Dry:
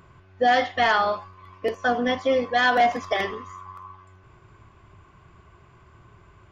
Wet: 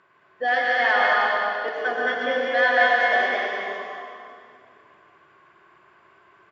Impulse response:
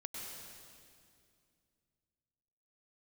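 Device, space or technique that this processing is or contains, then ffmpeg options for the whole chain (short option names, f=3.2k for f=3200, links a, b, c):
station announcement: -filter_complex "[0:a]highpass=400,lowpass=4.5k,equalizer=f=1.7k:t=o:w=0.36:g=8,aecho=1:1:177.8|221.6:0.355|0.708[a];[1:a]atrim=start_sample=2205[b];[a][b]afir=irnorm=-1:irlink=0"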